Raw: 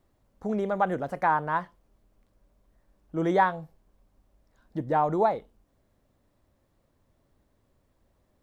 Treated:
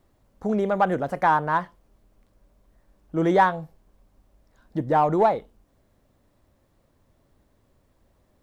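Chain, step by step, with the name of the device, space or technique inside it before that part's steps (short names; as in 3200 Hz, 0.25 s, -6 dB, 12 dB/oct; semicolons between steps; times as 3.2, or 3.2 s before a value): parallel distortion (in parallel at -10 dB: hard clip -22 dBFS, distortion -10 dB); on the sum: gain +2.5 dB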